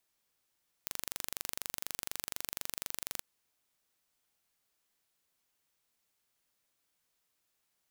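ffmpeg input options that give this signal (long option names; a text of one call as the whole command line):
ffmpeg -f lavfi -i "aevalsrc='0.355*eq(mod(n,1830),0)':duration=2.36:sample_rate=44100" out.wav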